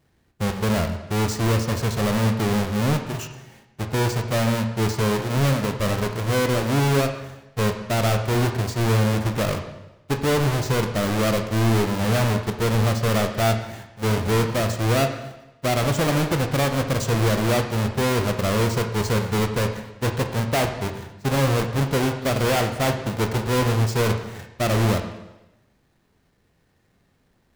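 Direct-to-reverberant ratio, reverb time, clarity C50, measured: 5.0 dB, 0.95 s, 8.0 dB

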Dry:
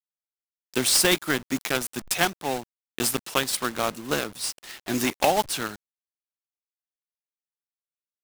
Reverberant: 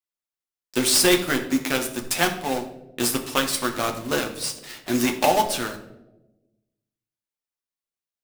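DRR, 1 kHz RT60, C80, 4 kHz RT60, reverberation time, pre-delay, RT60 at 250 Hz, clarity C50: 3.0 dB, 0.75 s, 12.5 dB, 0.55 s, 1.0 s, 8 ms, 1.4 s, 10.5 dB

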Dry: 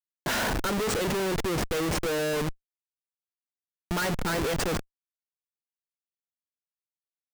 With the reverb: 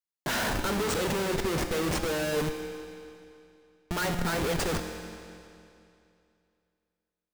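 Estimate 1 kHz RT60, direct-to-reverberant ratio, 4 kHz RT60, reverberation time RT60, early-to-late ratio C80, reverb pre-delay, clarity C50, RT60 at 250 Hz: 2.6 s, 5.0 dB, 2.4 s, 2.6 s, 7.5 dB, 6 ms, 6.5 dB, 2.6 s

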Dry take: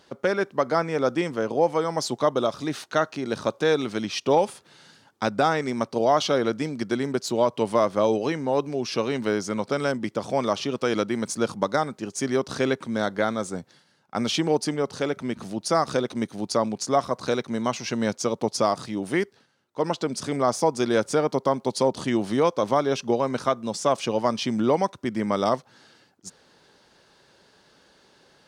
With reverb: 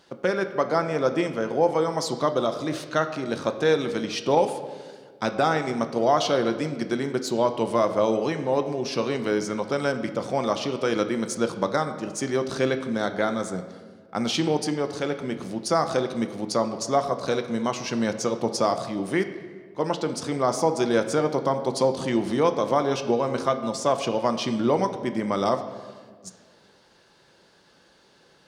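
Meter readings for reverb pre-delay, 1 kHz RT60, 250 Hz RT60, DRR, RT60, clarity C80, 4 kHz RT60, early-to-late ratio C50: 6 ms, 1.5 s, 2.1 s, 7.0 dB, 1.7 s, 11.5 dB, 1.1 s, 10.5 dB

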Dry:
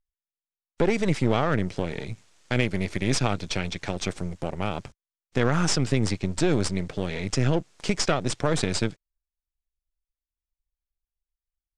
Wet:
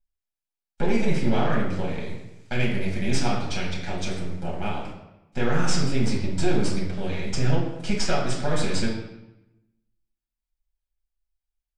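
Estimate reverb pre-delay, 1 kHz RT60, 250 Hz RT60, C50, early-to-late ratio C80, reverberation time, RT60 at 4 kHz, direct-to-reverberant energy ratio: 4 ms, 0.90 s, 1.1 s, 3.5 dB, 6.5 dB, 0.95 s, 0.70 s, -5.5 dB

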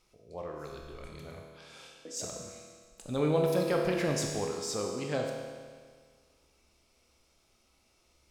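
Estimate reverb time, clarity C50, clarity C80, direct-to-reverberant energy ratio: 1.7 s, 2.5 dB, 4.0 dB, 0.5 dB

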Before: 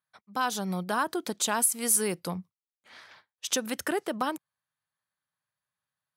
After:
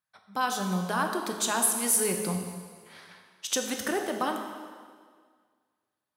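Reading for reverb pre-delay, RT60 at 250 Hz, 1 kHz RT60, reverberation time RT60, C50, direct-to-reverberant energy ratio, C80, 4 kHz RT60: 5 ms, 1.8 s, 1.8 s, 1.8 s, 5.0 dB, 3.0 dB, 6.5 dB, 1.7 s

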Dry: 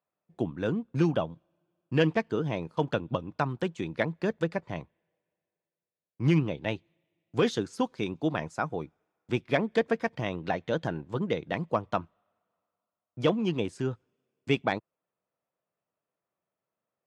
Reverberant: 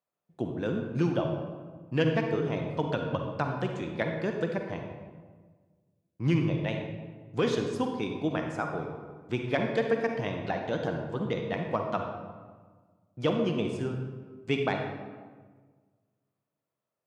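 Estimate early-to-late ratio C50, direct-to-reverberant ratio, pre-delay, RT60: 3.5 dB, 3.0 dB, 39 ms, 1.5 s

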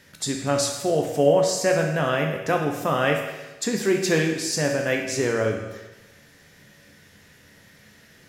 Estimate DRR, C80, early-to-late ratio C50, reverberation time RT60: 1.5 dB, 7.0 dB, 4.5 dB, 1.1 s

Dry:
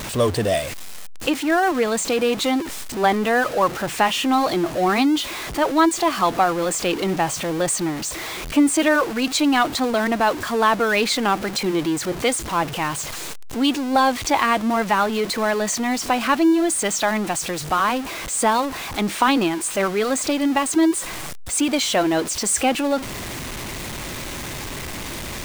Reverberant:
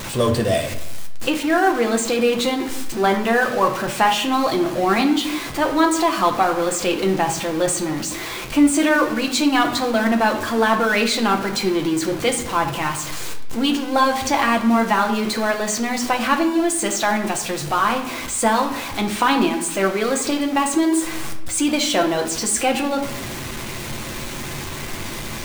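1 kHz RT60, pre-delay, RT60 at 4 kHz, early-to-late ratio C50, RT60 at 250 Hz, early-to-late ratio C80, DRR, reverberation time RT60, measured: 0.75 s, 6 ms, 0.60 s, 9.0 dB, 1.1 s, 12.5 dB, 2.0 dB, 0.80 s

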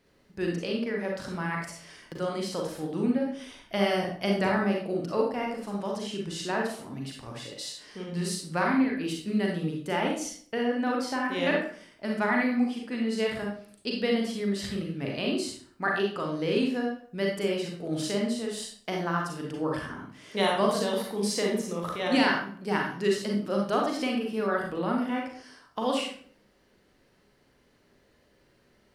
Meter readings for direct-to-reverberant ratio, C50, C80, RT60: -1.0 dB, 2.5 dB, 8.0 dB, 0.50 s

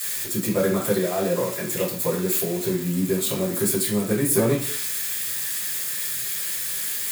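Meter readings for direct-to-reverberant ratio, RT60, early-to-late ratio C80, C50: -8.0 dB, 0.45 s, 10.5 dB, 5.5 dB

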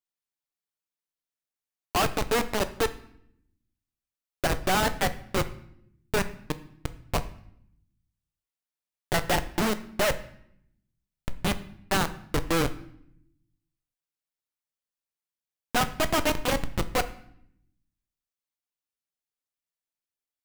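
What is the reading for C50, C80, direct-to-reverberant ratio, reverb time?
15.0 dB, 18.0 dB, 11.0 dB, 0.70 s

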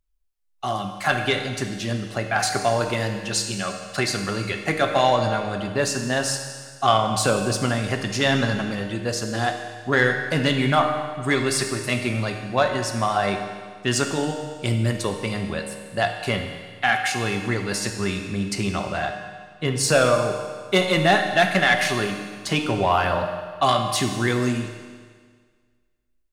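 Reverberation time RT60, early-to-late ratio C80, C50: 1.7 s, 7.0 dB, 6.0 dB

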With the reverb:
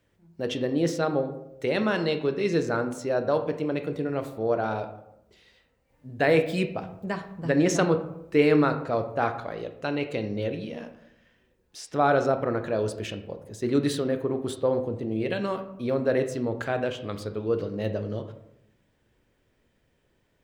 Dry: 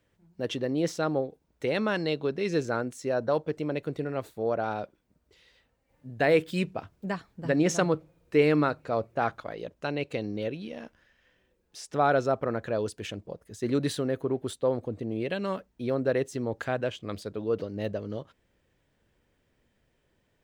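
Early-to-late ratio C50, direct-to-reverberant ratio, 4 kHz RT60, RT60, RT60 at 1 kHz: 10.0 dB, 7.0 dB, 0.45 s, 0.80 s, 0.75 s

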